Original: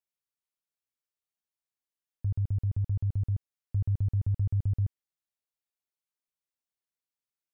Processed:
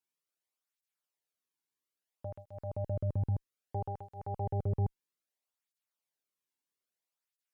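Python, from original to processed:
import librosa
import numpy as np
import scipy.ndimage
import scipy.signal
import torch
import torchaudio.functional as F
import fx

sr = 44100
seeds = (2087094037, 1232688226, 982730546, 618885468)

y = fx.cheby_harmonics(x, sr, harmonics=(4, 6, 8), levels_db=(-45, -27, -15), full_scale_db=-22.0)
y = fx.flanger_cancel(y, sr, hz=0.61, depth_ms=1.7)
y = y * 10.0 ** (4.0 / 20.0)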